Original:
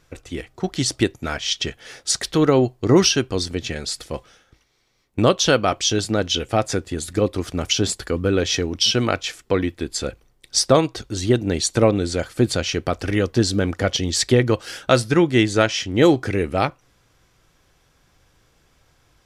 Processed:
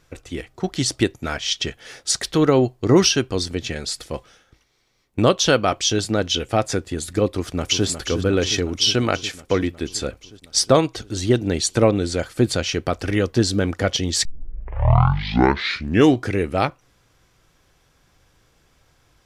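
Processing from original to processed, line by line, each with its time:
7.27–7.87 s: echo throw 360 ms, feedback 75%, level -9.5 dB
14.25 s: tape start 2.02 s

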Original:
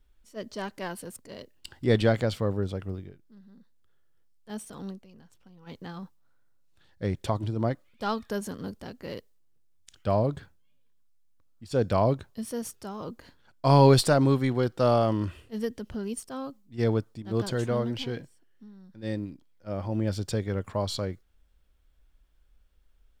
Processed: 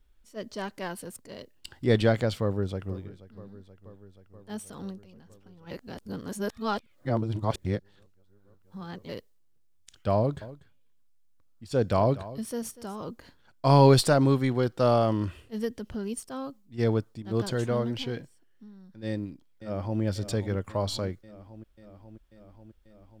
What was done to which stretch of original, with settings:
2.41–2.99 s: echo throw 480 ms, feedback 75%, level -17.5 dB
5.71–9.09 s: reverse
10.17–13.02 s: delay 242 ms -17 dB
19.07–20.01 s: echo throw 540 ms, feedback 75%, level -12 dB

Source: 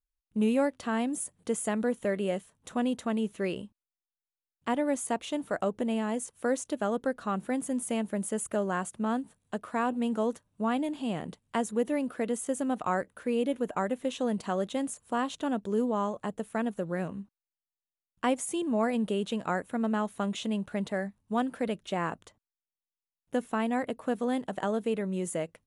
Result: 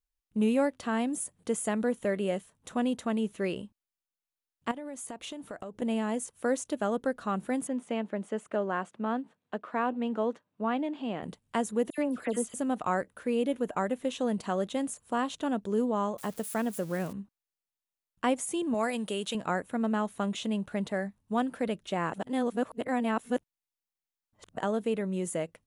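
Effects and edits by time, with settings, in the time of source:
4.71–5.82 s: compression 10:1, threshold -36 dBFS
7.67–11.23 s: band-pass 220–3300 Hz
11.90–12.54 s: phase dispersion lows, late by 80 ms, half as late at 2.4 kHz
16.18–17.13 s: zero-crossing glitches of -36 dBFS
18.74–19.35 s: tilt EQ +2.5 dB/octave
22.13–24.58 s: reverse

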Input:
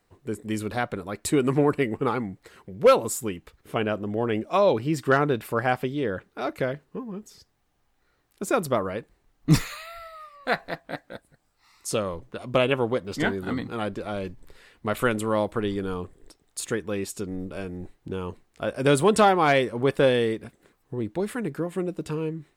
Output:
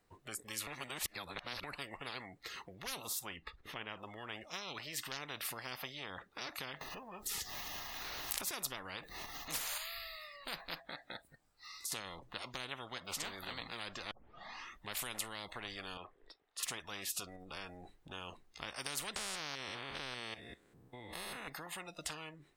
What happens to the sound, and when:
0.67–1.64 s: reverse
3.19–3.99 s: low-pass 3.1 kHz 6 dB/octave
6.81–9.78 s: upward compressor, threshold -24 dBFS
10.82–11.92 s: compression, threshold -40 dBFS
14.11 s: tape start 0.80 s
15.97–16.63 s: three-band isolator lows -16 dB, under 410 Hz, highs -21 dB, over 3.5 kHz
17.36–18.11 s: compression, threshold -34 dBFS
19.16–21.48 s: spectrogram pixelated in time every 200 ms
whole clip: compression 1.5:1, threshold -39 dBFS; spectral noise reduction 16 dB; spectrum-flattening compressor 10:1; trim +2.5 dB

